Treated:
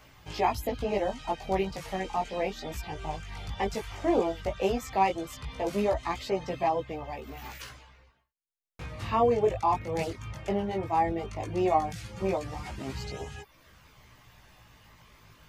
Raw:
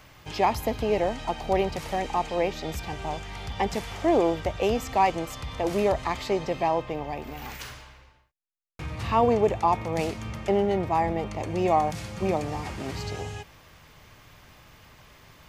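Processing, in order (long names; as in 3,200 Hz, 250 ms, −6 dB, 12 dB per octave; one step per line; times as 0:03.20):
reverb reduction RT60 0.55 s
multi-voice chorus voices 2, 0.15 Hz, delay 18 ms, depth 3.1 ms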